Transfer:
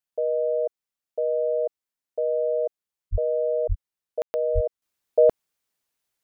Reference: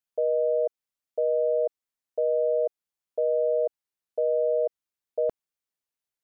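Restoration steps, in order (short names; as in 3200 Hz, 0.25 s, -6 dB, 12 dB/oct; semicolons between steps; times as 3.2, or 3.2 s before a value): 3.11–3.23 HPF 140 Hz 24 dB/oct; 3.68–3.8 HPF 140 Hz 24 dB/oct; 4.54–4.66 HPF 140 Hz 24 dB/oct; room tone fill 4.22–4.34; gain 0 dB, from 4.82 s -9.5 dB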